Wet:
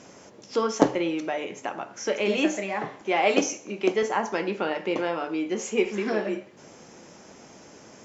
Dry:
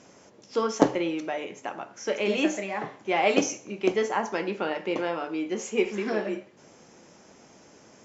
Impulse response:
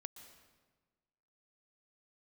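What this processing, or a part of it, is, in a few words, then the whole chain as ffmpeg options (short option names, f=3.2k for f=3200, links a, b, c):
parallel compression: -filter_complex "[0:a]asettb=1/sr,asplit=3[a][b][c];[a]atrim=end=3.014[d];[b]atrim=start=3.01:end=4.03,asetpts=PTS-STARTPTS,afade=t=in:d=0.004:c=qsin,afade=t=out:st=1.016:d=0.004:c=qsin,highpass=180[e];[c]atrim=start=4.026[f];[d][e]acrossfade=d=0.004:c1=hsin:c2=qsin[g];[g][f]acrossfade=d=0.004:c1=qsin:c2=hsin,asplit=2[h][i];[i]acompressor=threshold=-37dB:ratio=6,volume=-2.5dB[j];[h][j]amix=inputs=2:normalize=0"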